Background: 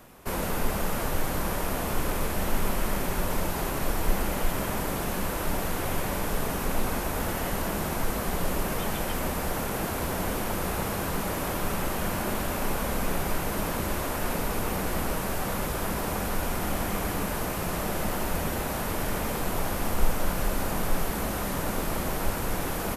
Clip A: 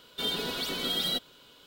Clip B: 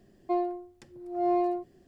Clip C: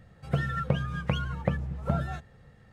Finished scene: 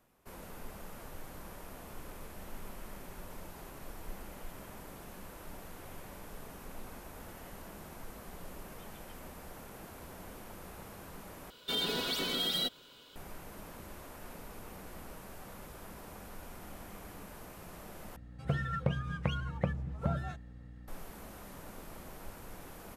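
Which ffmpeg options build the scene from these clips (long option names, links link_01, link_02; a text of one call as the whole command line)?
ffmpeg -i bed.wav -i cue0.wav -i cue1.wav -i cue2.wav -filter_complex "[0:a]volume=-19dB[link_01];[1:a]alimiter=limit=-23dB:level=0:latency=1:release=71[link_02];[3:a]aeval=exprs='val(0)+0.00631*(sin(2*PI*60*n/s)+sin(2*PI*2*60*n/s)/2+sin(2*PI*3*60*n/s)/3+sin(2*PI*4*60*n/s)/4+sin(2*PI*5*60*n/s)/5)':channel_layout=same[link_03];[link_01]asplit=3[link_04][link_05][link_06];[link_04]atrim=end=11.504[link_07];[link_02]atrim=end=1.66,asetpts=PTS-STARTPTS,volume=-1dB[link_08];[link_05]atrim=start=13.156:end=18.164[link_09];[link_03]atrim=end=2.72,asetpts=PTS-STARTPTS,volume=-5dB[link_10];[link_06]atrim=start=20.876[link_11];[link_07][link_08]acrossfade=duration=0.004:curve1=hsin:curve2=hsin[link_12];[link_12][link_09]acrossfade=duration=0.004:curve1=hsin:curve2=hsin[link_13];[link_13][link_10]acrossfade=duration=0.004:curve1=hsin:curve2=hsin[link_14];[link_14][link_11]acrossfade=duration=0.004:curve1=hsin:curve2=hsin" out.wav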